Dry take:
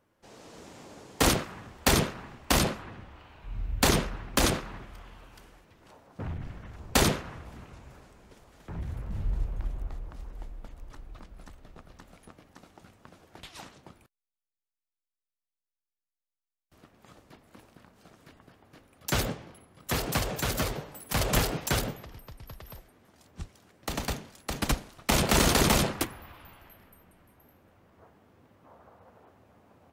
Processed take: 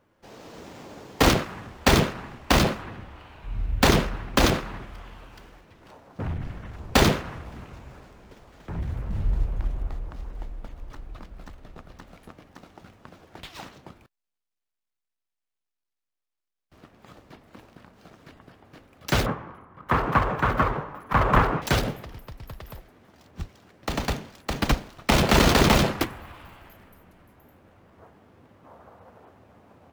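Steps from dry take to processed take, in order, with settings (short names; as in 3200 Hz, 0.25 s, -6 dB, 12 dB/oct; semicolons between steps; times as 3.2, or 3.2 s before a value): median filter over 5 samples; 19.26–21.62 EQ curve 690 Hz 0 dB, 1100 Hz +11 dB, 4800 Hz -17 dB; gain +5.5 dB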